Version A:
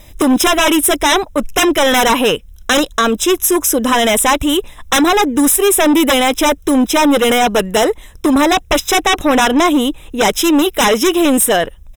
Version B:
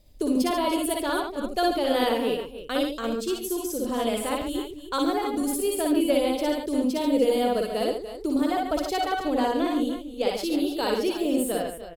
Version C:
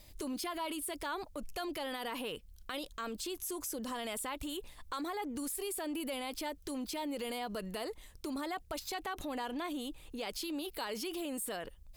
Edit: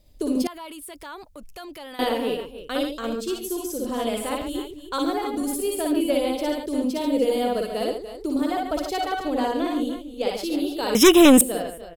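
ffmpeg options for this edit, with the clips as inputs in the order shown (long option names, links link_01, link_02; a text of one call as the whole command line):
ffmpeg -i take0.wav -i take1.wav -i take2.wav -filter_complex "[1:a]asplit=3[link_01][link_02][link_03];[link_01]atrim=end=0.472[link_04];[2:a]atrim=start=0.468:end=1.992[link_05];[link_02]atrim=start=1.988:end=10.952[link_06];[0:a]atrim=start=10.948:end=11.412[link_07];[link_03]atrim=start=11.408[link_08];[link_04][link_05]acrossfade=duration=0.004:curve1=hsin:curve2=hsin[link_09];[link_09][link_06]acrossfade=duration=0.004:curve1=hsin:curve2=hsin[link_10];[link_10][link_07]acrossfade=duration=0.004:curve1=hsin:curve2=hsin[link_11];[link_11][link_08]acrossfade=duration=0.004:curve1=hsin:curve2=hsin" out.wav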